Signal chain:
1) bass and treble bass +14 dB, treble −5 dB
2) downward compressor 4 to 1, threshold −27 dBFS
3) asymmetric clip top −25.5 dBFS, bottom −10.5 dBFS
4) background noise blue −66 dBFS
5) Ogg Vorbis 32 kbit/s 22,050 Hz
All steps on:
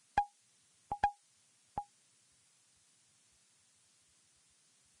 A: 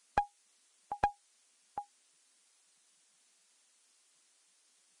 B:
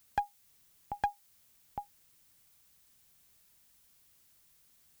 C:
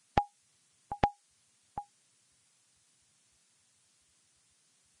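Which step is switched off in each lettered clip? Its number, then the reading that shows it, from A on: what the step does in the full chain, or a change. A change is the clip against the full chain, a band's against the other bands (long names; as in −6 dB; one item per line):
1, change in crest factor +3.5 dB
5, change in momentary loudness spread +6 LU
3, distortion level −3 dB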